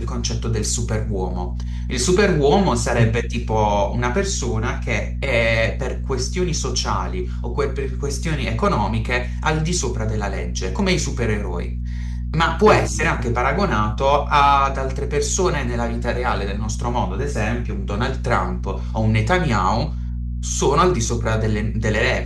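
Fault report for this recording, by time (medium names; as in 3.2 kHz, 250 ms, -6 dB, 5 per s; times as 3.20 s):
hum 60 Hz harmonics 4 -25 dBFS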